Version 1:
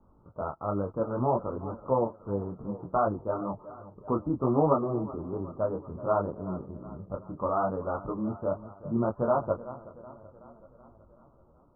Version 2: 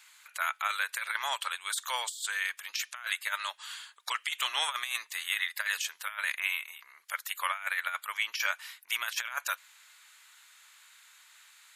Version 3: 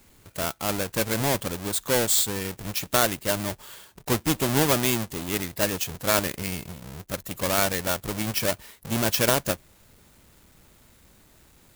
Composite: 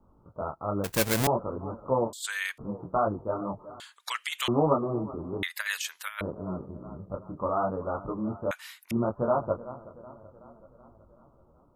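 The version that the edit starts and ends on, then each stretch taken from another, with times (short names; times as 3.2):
1
0.84–1.27 from 3
2.13–2.58 from 2
3.8–4.48 from 2
5.43–6.21 from 2
8.51–8.91 from 2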